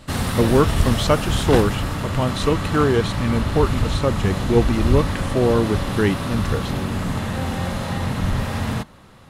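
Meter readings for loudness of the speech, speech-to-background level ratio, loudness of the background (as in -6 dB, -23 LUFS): -21.5 LUFS, 2.5 dB, -24.0 LUFS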